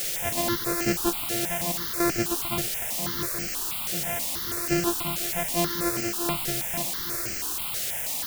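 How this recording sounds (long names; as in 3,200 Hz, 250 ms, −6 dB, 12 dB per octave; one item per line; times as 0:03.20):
a buzz of ramps at a fixed pitch in blocks of 128 samples
sample-and-hold tremolo 3.5 Hz, depth 85%
a quantiser's noise floor 6 bits, dither triangular
notches that jump at a steady rate 6.2 Hz 270–3,600 Hz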